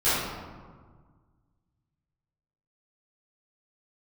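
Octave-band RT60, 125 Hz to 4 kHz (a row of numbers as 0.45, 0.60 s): 2.4, 2.0, 1.6, 1.6, 1.2, 0.80 s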